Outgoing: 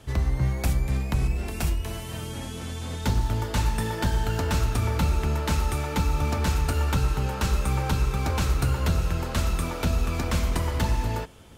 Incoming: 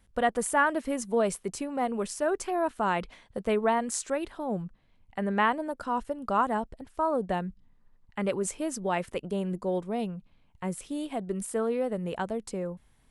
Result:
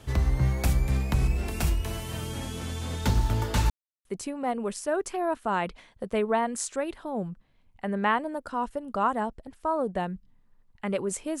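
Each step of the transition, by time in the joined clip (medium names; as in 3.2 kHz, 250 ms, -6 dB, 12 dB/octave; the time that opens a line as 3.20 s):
outgoing
3.70–4.05 s: mute
4.05 s: go over to incoming from 1.39 s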